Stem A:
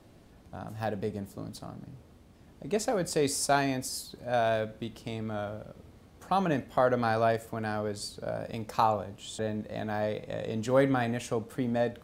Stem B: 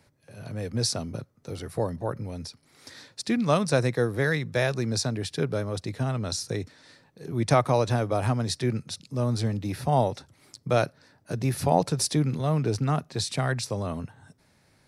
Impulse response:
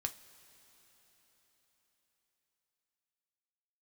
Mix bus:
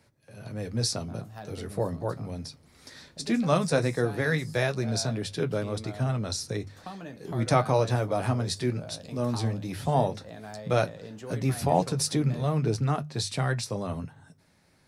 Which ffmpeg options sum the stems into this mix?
-filter_complex "[0:a]acrossover=split=280|2300[a][b][c];[a]acompressor=threshold=-40dB:ratio=4[d];[b]acompressor=threshold=-36dB:ratio=4[e];[c]acompressor=threshold=-47dB:ratio=4[f];[d][e][f]amix=inputs=3:normalize=0,adelay=550,volume=-1.5dB[g];[1:a]bandreject=f=50:t=h:w=6,bandreject=f=100:t=h:w=6,bandreject=f=150:t=h:w=6,volume=2.5dB[h];[g][h]amix=inputs=2:normalize=0,equalizer=f=150:t=o:w=0.27:g=4.5,flanger=delay=9:depth=3:regen=-50:speed=0.16:shape=triangular"

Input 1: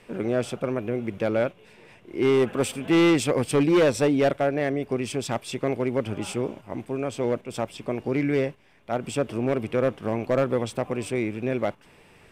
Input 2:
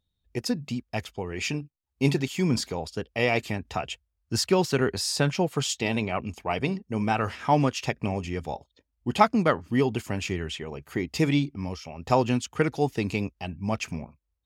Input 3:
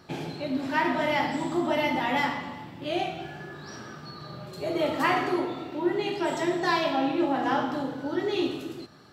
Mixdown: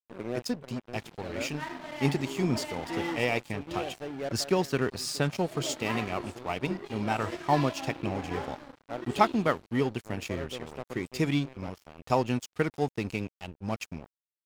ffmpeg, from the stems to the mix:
-filter_complex "[0:a]highpass=f=110:p=1,adynamicequalizer=threshold=0.0141:dfrequency=1700:dqfactor=0.7:tfrequency=1700:tqfactor=0.7:attack=5:release=100:ratio=0.375:range=1.5:mode=cutabove:tftype=highshelf,volume=-6dB[a];[1:a]volume=-3dB,asplit=2[b][c];[2:a]adelay=850,volume=-10dB[d];[c]apad=whole_len=543197[e];[a][e]sidechaincompress=threshold=-34dB:ratio=4:attack=5.6:release=1050[f];[f][b][d]amix=inputs=3:normalize=0,aeval=exprs='sgn(val(0))*max(abs(val(0))-0.00944,0)':c=same"

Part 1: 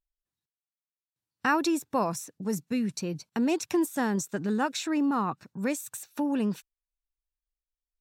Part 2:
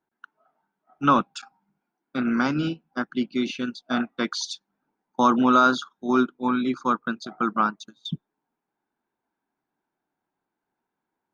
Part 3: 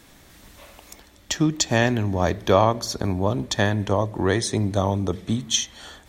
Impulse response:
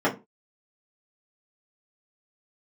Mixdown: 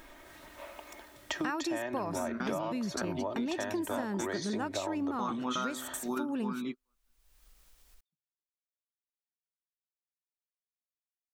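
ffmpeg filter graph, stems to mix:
-filter_complex "[0:a]acompressor=mode=upward:threshold=-36dB:ratio=2.5,volume=0dB,asplit=2[a][b];[1:a]bandreject=f=128.9:t=h:w=4,bandreject=f=257.8:t=h:w=4,bandreject=f=386.7:t=h:w=4,bandreject=f=515.6:t=h:w=4,bandreject=f=644.5:t=h:w=4,bandreject=f=773.4:t=h:w=4,bandreject=f=902.3:t=h:w=4,bandreject=f=1.0312k:t=h:w=4,bandreject=f=1.1601k:t=h:w=4,bandreject=f=1.289k:t=h:w=4,volume=-7.5dB[c];[2:a]acrossover=split=340 2600:gain=0.178 1 0.2[d][e][f];[d][e][f]amix=inputs=3:normalize=0,aecho=1:1:3.2:0.55,acompressor=threshold=-31dB:ratio=2,volume=1dB[g];[b]apad=whole_len=499668[h];[c][h]sidechaingate=range=-55dB:threshold=-53dB:ratio=16:detection=peak[i];[a][i][g]amix=inputs=3:normalize=0,acompressor=threshold=-31dB:ratio=6"

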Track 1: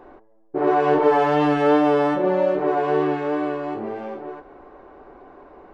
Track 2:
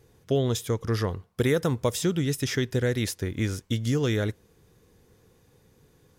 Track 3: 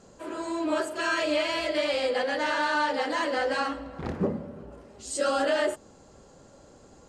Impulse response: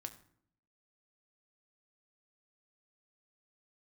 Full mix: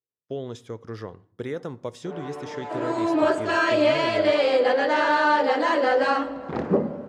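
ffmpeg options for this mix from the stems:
-filter_complex "[0:a]flanger=delay=22.5:depth=6.8:speed=0.36,asoftclip=type=tanh:threshold=-24.5dB,adelay=1500,volume=-16dB[a];[1:a]agate=range=-33dB:threshold=-48dB:ratio=16:detection=peak,volume=-16.5dB,asplit=2[b][c];[c]volume=-4dB[d];[2:a]adelay=2500,volume=0dB[e];[3:a]atrim=start_sample=2205[f];[d][f]afir=irnorm=-1:irlink=0[g];[a][b][e][g]amix=inputs=4:normalize=0,highpass=110,lowpass=6.5k,equalizer=f=570:w=0.32:g=7.5"

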